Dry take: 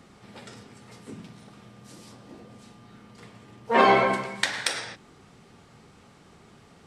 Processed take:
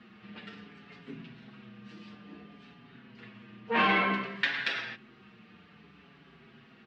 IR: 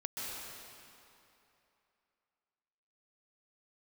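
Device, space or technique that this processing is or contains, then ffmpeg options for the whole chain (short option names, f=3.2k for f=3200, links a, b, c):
barber-pole flanger into a guitar amplifier: -filter_complex "[0:a]asplit=2[a][b];[b]adelay=5.9,afreqshift=-0.58[c];[a][c]amix=inputs=2:normalize=1,asoftclip=type=tanh:threshold=-20dB,highpass=80,equalizer=f=100:t=q:w=4:g=-9,equalizer=f=210:t=q:w=4:g=5,equalizer=f=550:t=q:w=4:g=-7,equalizer=f=850:t=q:w=4:g=-6,equalizer=f=1.7k:t=q:w=4:g=6,equalizer=f=2.7k:t=q:w=4:g=8,lowpass=f=4k:w=0.5412,lowpass=f=4k:w=1.3066"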